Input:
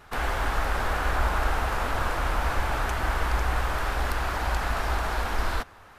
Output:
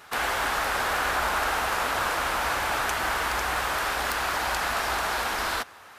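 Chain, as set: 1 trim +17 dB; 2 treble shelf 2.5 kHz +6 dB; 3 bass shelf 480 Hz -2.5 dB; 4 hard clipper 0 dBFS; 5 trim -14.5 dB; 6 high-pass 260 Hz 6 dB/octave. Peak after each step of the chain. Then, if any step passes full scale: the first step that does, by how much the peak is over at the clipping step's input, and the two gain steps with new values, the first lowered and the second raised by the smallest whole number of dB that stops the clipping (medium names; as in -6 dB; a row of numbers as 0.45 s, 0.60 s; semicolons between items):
+5.0 dBFS, +7.5 dBFS, +7.0 dBFS, 0.0 dBFS, -14.5 dBFS, -11.0 dBFS; step 1, 7.0 dB; step 1 +10 dB, step 5 -7.5 dB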